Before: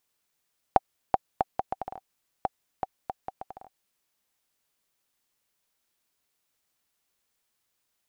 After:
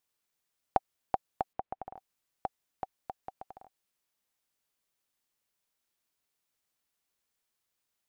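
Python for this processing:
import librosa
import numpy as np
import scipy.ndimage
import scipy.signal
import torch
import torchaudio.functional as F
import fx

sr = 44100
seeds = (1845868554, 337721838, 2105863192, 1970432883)

y = fx.air_absorb(x, sr, metres=360.0, at=(1.53, 1.96))
y = F.gain(torch.from_numpy(y), -5.5).numpy()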